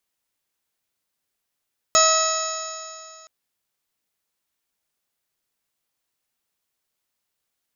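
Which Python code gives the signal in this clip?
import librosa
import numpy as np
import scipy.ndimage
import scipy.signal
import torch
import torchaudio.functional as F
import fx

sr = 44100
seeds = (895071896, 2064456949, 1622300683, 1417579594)

y = fx.additive_stiff(sr, length_s=1.32, hz=639.0, level_db=-19.0, upper_db=(2.5, -8, -9.0, -14.0, -5.0, -10.5, -2.0, -14, 3), decay_s=2.4, stiffness=0.0011)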